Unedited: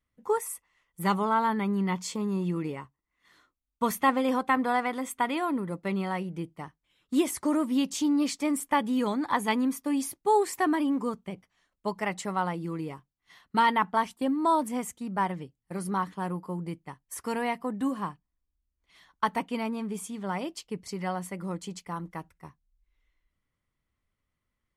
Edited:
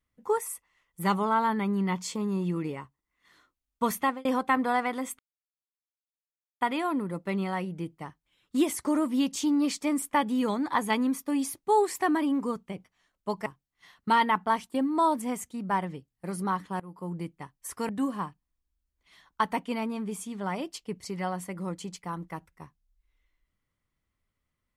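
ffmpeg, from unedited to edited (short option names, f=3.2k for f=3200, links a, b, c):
-filter_complex "[0:a]asplit=6[a][b][c][d][e][f];[a]atrim=end=4.25,asetpts=PTS-STARTPTS,afade=t=out:st=3.98:d=0.27[g];[b]atrim=start=4.25:end=5.19,asetpts=PTS-STARTPTS,afade=t=in:d=0.004:c=hsin,afade=t=out:st=0.936:d=0.004:c=hsin,apad=pad_dur=1.42[h];[c]atrim=start=5.19:end=12.042,asetpts=PTS-STARTPTS,afade=t=in:d=0.004:c=hsin[i];[d]atrim=start=12.928:end=16.27,asetpts=PTS-STARTPTS,afade=t=out:st=3.338:d=0.004:c=hsin:silence=0.0794328[j];[e]atrim=start=16.27:end=17.362,asetpts=PTS-STARTPTS,afade=t=in:d=0.33:silence=0.0794328[k];[f]atrim=start=17.718[l];[g][h][i]concat=n=3:v=0:a=1[m];[j][k]concat=n=2:v=0:a=1[n];[m][n]acrossfade=d=0.004:c1=hsin:c2=hsin[o];[o][l]acrossfade=d=0.004:c1=hsin:c2=hsin"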